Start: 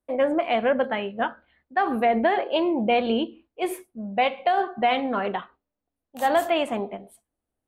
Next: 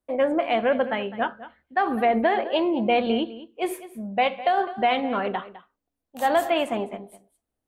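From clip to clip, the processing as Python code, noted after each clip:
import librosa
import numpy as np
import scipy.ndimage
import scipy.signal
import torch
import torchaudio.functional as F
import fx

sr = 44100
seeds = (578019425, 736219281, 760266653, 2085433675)

y = x + 10.0 ** (-16.0 / 20.0) * np.pad(x, (int(206 * sr / 1000.0), 0))[:len(x)]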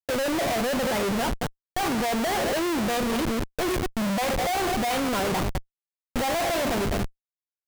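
y = fx.schmitt(x, sr, flips_db=-36.0)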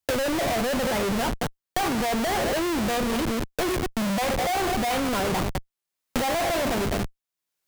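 y = fx.band_squash(x, sr, depth_pct=70)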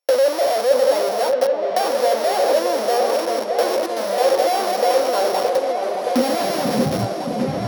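y = np.r_[np.sort(x[:len(x) // 8 * 8].reshape(-1, 8), axis=1).ravel(), x[len(x) // 8 * 8:]]
y = fx.filter_sweep_highpass(y, sr, from_hz=540.0, to_hz=80.0, start_s=5.4, end_s=7.51, q=4.2)
y = fx.echo_opening(y, sr, ms=620, hz=750, octaves=2, feedback_pct=70, wet_db=-3)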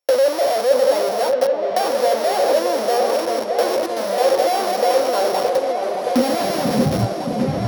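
y = fx.low_shelf(x, sr, hz=110.0, db=10.5)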